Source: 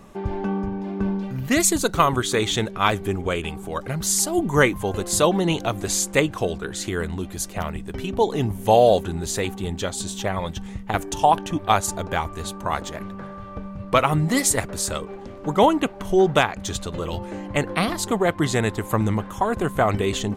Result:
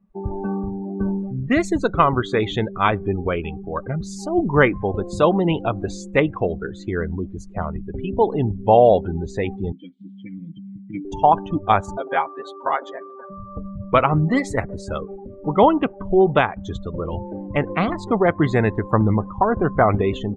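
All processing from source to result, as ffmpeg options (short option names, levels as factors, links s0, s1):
-filter_complex "[0:a]asettb=1/sr,asplit=3[s0][s1][s2];[s0]atrim=end=9.724[s3];[s1]atrim=start=9.72:end=11.05,asetpts=PTS-STARTPTS,afade=t=in:d=0.004:c=qsin,afade=t=out:st=1.326:d=0.004:c=qsin,asubboost=boost=11:cutoff=240,asplit=3[s4][s5][s6];[s4]bandpass=f=270:t=q:w=8,volume=1[s7];[s5]bandpass=f=2290:t=q:w=8,volume=0.501[s8];[s6]bandpass=f=3010:t=q:w=8,volume=0.355[s9];[s7][s8][s9]amix=inputs=3:normalize=0,aecho=1:1:6.1:0.9,atrim=end_sample=58653[s10];[s2]atrim=start=11.046[s11];[s3][s10]acrossfade=d=0.004:c1=hsin:c2=qsin[s12];[s12][s11]acrossfade=d=0.004:c1=qsin:c2=hsin,asettb=1/sr,asplit=3[s13][s14][s15];[s13]atrim=end=11.974[s16];[s14]atrim=start=11.97:end=13.3,asetpts=PTS-STARTPTS,afade=t=in:d=0.004:c=qsin,afade=t=out:st=1.326:d=0.004:c=qsin,highpass=350,aecho=1:1:7.4:0.83,atrim=end_sample=58653,acompressor=mode=upward:threshold=0.0224:ratio=2.5:attack=3.2:release=140:knee=2.83:detection=peak[s17];[s15]atrim=start=13.296[s18];[s16][s17]acrossfade=d=0.004:c1=hsin:c2=qsin[s19];[s19][s18]acrossfade=d=0.004:c1=qsin:c2=hsin,afftdn=nr=29:nf=-30,dynaudnorm=f=740:g=3:m=1.88,lowpass=2400"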